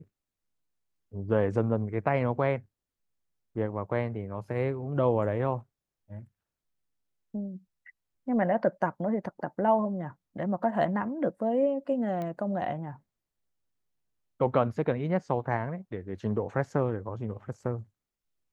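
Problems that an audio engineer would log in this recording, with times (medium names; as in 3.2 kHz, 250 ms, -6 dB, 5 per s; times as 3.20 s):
12.22 s: pop -24 dBFS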